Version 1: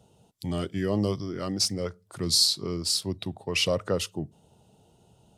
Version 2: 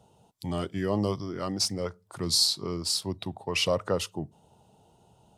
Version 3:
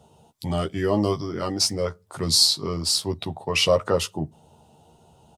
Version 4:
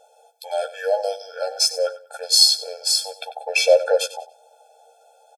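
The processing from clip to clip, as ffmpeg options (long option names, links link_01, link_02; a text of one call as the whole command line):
ffmpeg -i in.wav -af "equalizer=frequency=920:width=1.5:gain=7,volume=-2dB" out.wav
ffmpeg -i in.wav -filter_complex "[0:a]asplit=2[link_01][link_02];[link_02]adelay=13,volume=-5dB[link_03];[link_01][link_03]amix=inputs=2:normalize=0,volume=4.5dB" out.wav
ffmpeg -i in.wav -af "aecho=1:1:95|190|285:0.168|0.0436|0.0113,afftfilt=real='re*eq(mod(floor(b*sr/1024/450),2),1)':imag='im*eq(mod(floor(b*sr/1024/450),2),1)':win_size=1024:overlap=0.75,volume=6dB" out.wav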